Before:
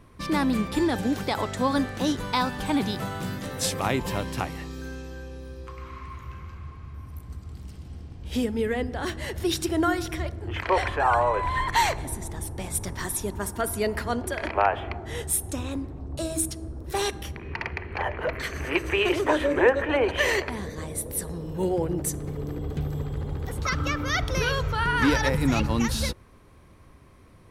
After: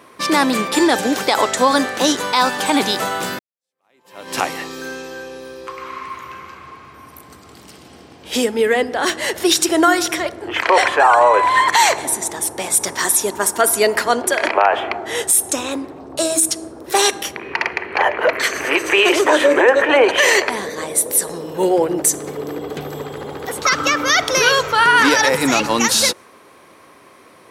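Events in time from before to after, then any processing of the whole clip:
3.39–4.36 s: fade in exponential
whole clip: high-pass 400 Hz 12 dB/octave; dynamic bell 7.1 kHz, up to +6 dB, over -48 dBFS, Q 1.2; loudness maximiser +15.5 dB; trim -2 dB

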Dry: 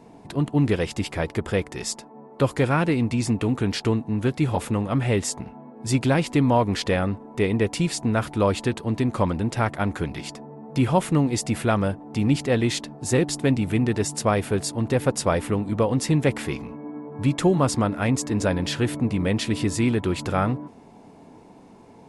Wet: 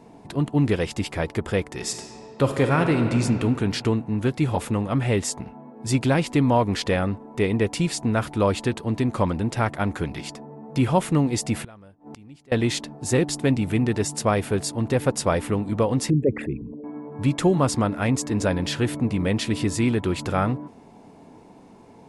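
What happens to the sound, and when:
1.74–3.22 s: reverb throw, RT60 2.4 s, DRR 5 dB
11.64–12.52 s: inverted gate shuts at -24 dBFS, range -25 dB
16.10–16.84 s: resonances exaggerated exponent 3

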